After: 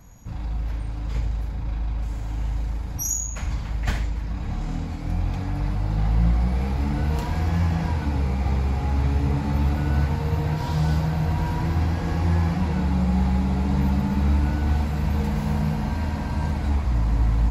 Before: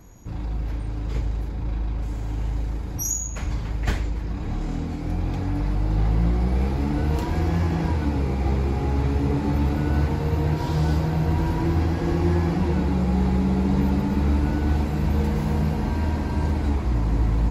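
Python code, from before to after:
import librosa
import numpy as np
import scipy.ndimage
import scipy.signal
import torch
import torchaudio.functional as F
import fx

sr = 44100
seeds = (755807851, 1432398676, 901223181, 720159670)

y = fx.peak_eq(x, sr, hz=360.0, db=-12.0, octaves=0.57)
y = y + 10.0 ** (-11.0 / 20.0) * np.pad(y, (int(71 * sr / 1000.0), 0))[:len(y)]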